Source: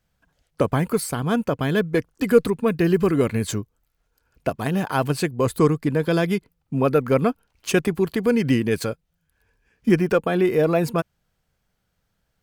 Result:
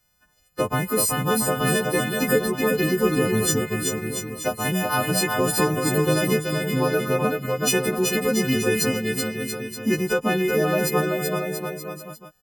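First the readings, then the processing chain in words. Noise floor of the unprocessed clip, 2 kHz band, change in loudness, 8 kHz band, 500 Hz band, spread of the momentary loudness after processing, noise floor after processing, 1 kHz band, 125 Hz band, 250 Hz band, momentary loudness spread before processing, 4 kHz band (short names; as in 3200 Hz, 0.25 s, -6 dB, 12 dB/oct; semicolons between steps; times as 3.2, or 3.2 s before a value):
-73 dBFS, +4.5 dB, -0.5 dB, +11.0 dB, -1.0 dB, 8 LU, -62 dBFS, +1.5 dB, -1.5 dB, -2.0 dB, 9 LU, +7.0 dB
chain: frequency quantiser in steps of 3 st; compressor 2.5:1, threshold -20 dBFS, peak gain reduction 7 dB; on a send: bouncing-ball echo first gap 0.38 s, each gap 0.8×, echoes 5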